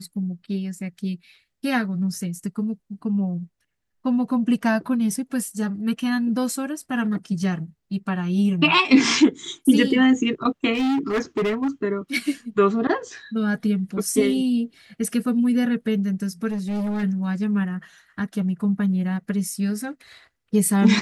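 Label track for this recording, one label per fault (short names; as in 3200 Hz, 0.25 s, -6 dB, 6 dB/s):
10.730000	11.680000	clipped -19 dBFS
16.490000	17.040000	clipped -23 dBFS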